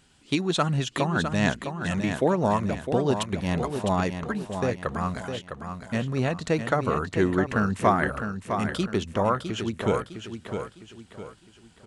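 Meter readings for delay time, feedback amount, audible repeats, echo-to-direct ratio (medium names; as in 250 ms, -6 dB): 657 ms, 38%, 4, -7.0 dB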